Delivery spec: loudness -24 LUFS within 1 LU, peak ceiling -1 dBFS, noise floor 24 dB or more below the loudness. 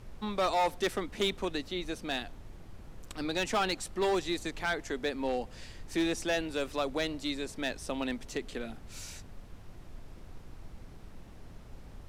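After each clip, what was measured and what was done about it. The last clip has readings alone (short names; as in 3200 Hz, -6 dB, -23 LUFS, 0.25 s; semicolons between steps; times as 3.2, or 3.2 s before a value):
clipped 1.2%; flat tops at -23.5 dBFS; noise floor -50 dBFS; noise floor target -58 dBFS; loudness -33.5 LUFS; peak -23.5 dBFS; loudness target -24.0 LUFS
-> clip repair -23.5 dBFS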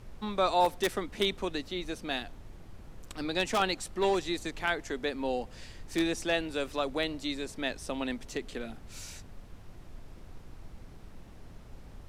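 clipped 0.0%; noise floor -50 dBFS; noise floor target -56 dBFS
-> noise print and reduce 6 dB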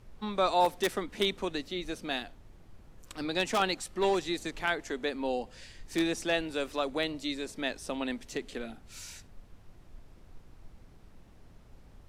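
noise floor -55 dBFS; noise floor target -56 dBFS
-> noise print and reduce 6 dB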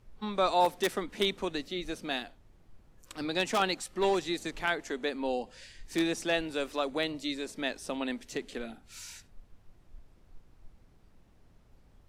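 noise floor -61 dBFS; loudness -32.0 LUFS; peak -14.5 dBFS; loudness target -24.0 LUFS
-> gain +8 dB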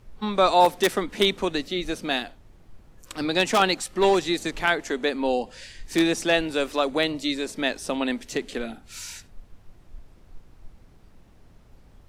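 loudness -24.0 LUFS; peak -6.5 dBFS; noise floor -53 dBFS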